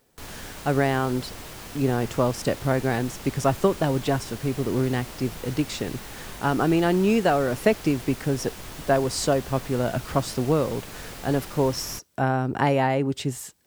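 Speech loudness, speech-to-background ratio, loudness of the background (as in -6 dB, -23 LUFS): -25.0 LUFS, 14.0 dB, -39.0 LUFS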